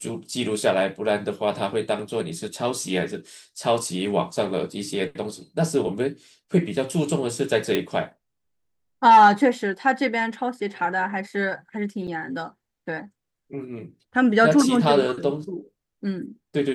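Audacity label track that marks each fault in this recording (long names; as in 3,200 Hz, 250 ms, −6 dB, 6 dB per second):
7.750000	7.750000	click −9 dBFS
12.070000	12.080000	drop-out 7 ms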